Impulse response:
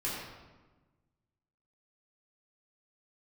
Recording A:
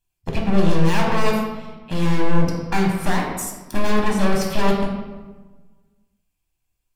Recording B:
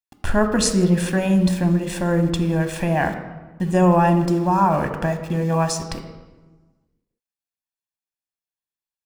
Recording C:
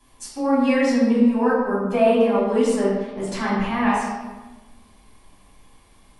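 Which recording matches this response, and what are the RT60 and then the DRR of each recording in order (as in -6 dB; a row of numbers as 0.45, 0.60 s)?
C; 1.3, 1.3, 1.2 s; -1.0, 6.5, -8.0 dB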